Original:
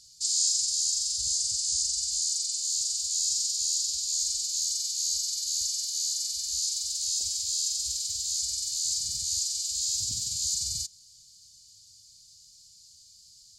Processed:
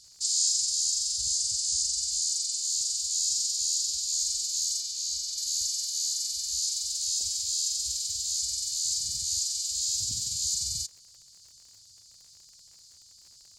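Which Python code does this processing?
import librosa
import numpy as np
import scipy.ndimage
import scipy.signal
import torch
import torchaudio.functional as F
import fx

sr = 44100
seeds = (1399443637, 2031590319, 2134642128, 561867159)

y = fx.high_shelf(x, sr, hz=8500.0, db=-10.0, at=(4.8, 5.38))
y = fx.dmg_crackle(y, sr, seeds[0], per_s=69.0, level_db=-47.0)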